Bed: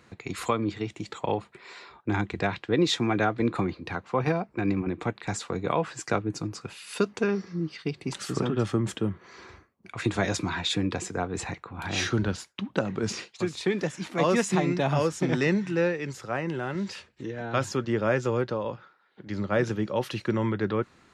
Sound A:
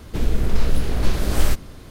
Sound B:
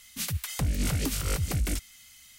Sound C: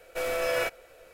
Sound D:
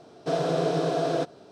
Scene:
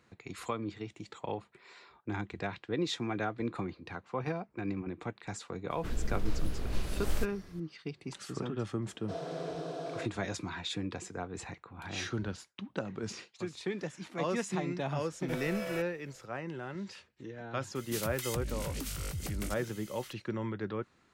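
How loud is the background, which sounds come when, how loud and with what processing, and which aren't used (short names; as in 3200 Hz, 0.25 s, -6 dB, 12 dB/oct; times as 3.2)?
bed -9.5 dB
5.7 add A -14 dB
8.82 add D -13.5 dB
15.13 add C -11.5 dB
17.75 add B -1 dB + compressor, threshold -33 dBFS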